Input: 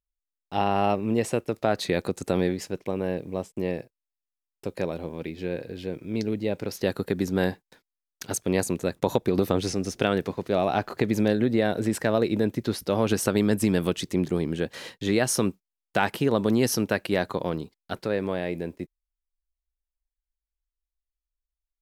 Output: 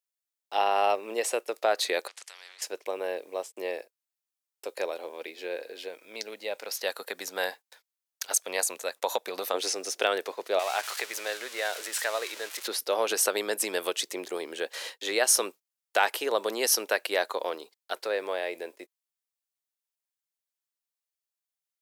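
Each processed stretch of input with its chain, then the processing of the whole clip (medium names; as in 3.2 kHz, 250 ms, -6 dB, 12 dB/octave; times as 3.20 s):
2.08–2.62 s: ladder band-pass 2.1 kHz, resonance 55% + spectrum-flattening compressor 4:1
5.88–9.54 s: high-pass 52 Hz + peaking EQ 360 Hz -9 dB 0.81 oct
10.59–12.68 s: zero-crossing glitches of -20.5 dBFS + band-pass filter 1.9 kHz, Q 0.68
whole clip: high-pass 460 Hz 24 dB/octave; treble shelf 3.7 kHz +6.5 dB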